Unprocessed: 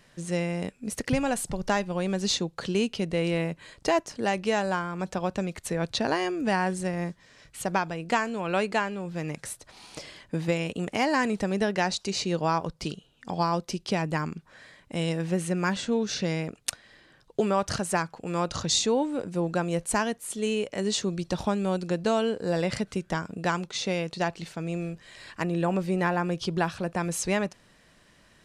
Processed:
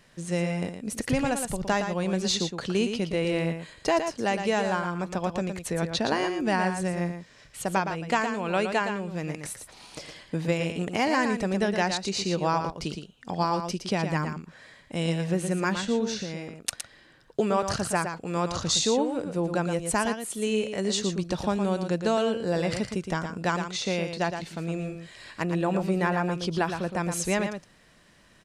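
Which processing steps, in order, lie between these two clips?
16.06–16.62 compressor 5:1, threshold -32 dBFS, peak gain reduction 8.5 dB; on a send: echo 0.115 s -7.5 dB

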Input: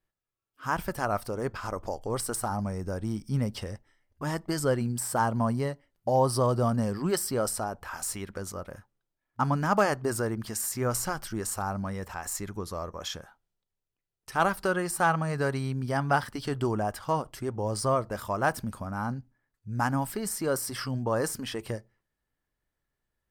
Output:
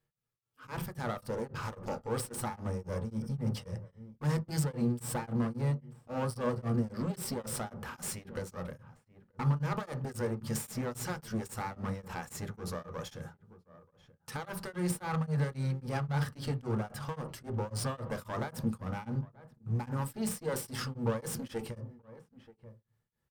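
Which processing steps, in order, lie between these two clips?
limiter -22 dBFS, peak gain reduction 9 dB; one-sided clip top -43 dBFS; outdoor echo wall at 160 m, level -18 dB; on a send at -5.5 dB: reverb RT60 0.30 s, pre-delay 3 ms; on the sum: beating tremolo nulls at 3.7 Hz

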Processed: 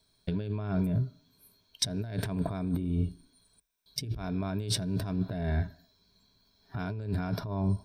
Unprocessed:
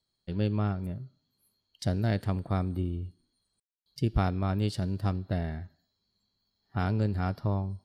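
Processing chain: ripple EQ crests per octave 1.6, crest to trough 9 dB; negative-ratio compressor -36 dBFS, ratio -1; gain +4.5 dB

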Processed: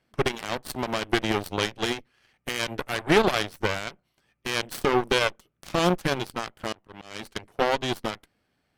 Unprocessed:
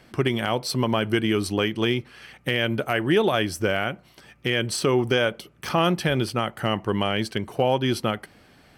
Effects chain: added harmonics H 4 -12 dB, 7 -16 dB, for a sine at -8.5 dBFS; 6.72–7.23 auto swell 0.284 s

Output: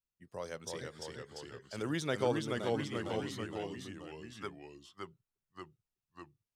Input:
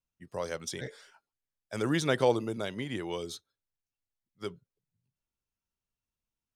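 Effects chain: 3.31–4.5 band shelf 1300 Hz +9.5 dB; echoes that change speed 0.303 s, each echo -1 st, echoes 3; gain -7 dB

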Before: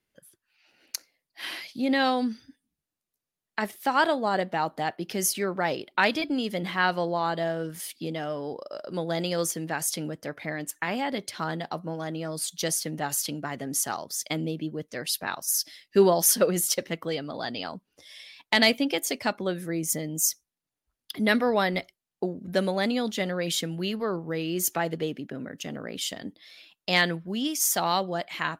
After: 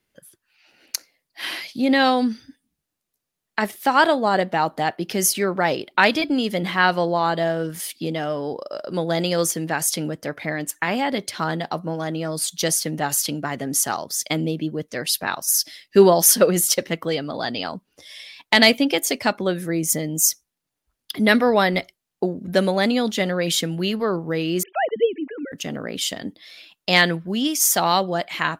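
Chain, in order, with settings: 24.63–25.52 sine-wave speech; gain +6.5 dB

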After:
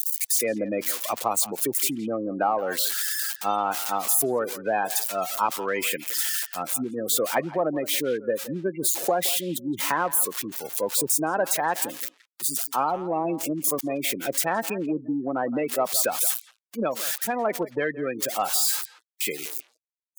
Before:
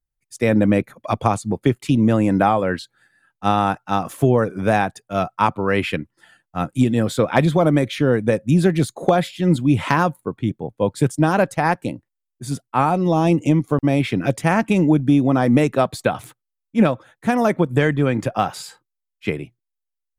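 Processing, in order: switching spikes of -11 dBFS; spectral gate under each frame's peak -20 dB strong; HPF 390 Hz 12 dB/oct; in parallel at -11.5 dB: soft clip -15 dBFS, distortion -13 dB; on the sum: speakerphone echo 0.17 s, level -15 dB; gain -7 dB

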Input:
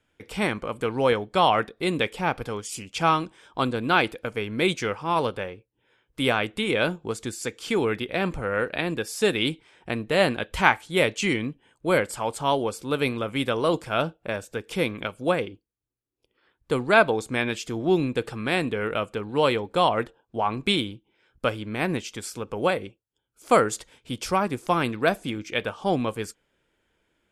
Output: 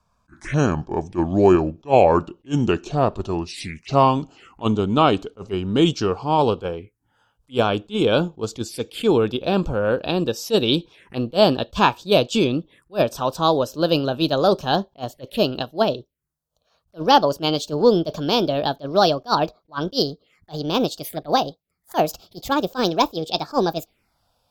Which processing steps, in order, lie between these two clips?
speed glide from 70% -> 153%; envelope phaser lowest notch 340 Hz, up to 2000 Hz, full sweep at -28 dBFS; attack slew limiter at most 370 dB/s; gain +7.5 dB

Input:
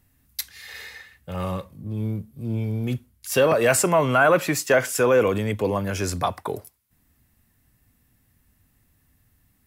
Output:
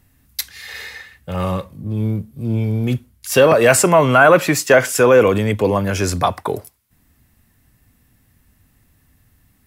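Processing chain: high shelf 10000 Hz -3.5 dB; gain +7 dB

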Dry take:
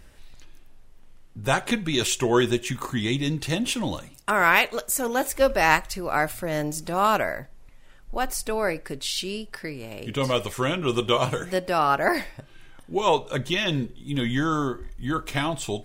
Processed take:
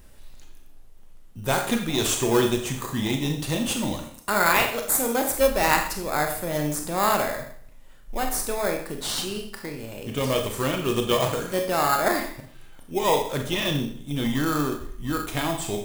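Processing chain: Schroeder reverb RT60 0.57 s, combs from 27 ms, DRR 3.5 dB; in parallel at -6 dB: sample-rate reducer 2900 Hz, jitter 0%; on the sum: high shelf 8400 Hz +11.5 dB; gain -4.5 dB

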